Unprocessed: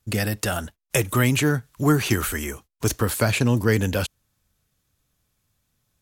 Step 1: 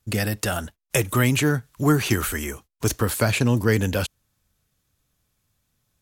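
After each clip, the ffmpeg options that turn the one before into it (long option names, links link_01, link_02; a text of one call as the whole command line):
ffmpeg -i in.wav -af anull out.wav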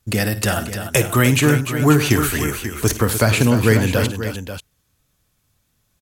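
ffmpeg -i in.wav -af "aecho=1:1:54|101|299|538:0.224|0.1|0.335|0.282,volume=4.5dB" out.wav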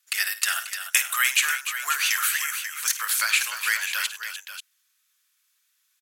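ffmpeg -i in.wav -af "highpass=frequency=1400:width=0.5412,highpass=frequency=1400:width=1.3066" out.wav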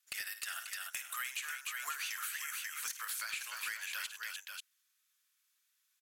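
ffmpeg -i in.wav -af "acompressor=threshold=-28dB:ratio=12,volume=23dB,asoftclip=hard,volume=-23dB,volume=-8dB" out.wav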